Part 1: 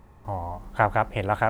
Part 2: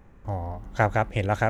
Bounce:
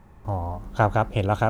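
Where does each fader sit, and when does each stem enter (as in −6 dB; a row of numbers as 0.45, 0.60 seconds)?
−0.5, −3.0 decibels; 0.00, 0.00 seconds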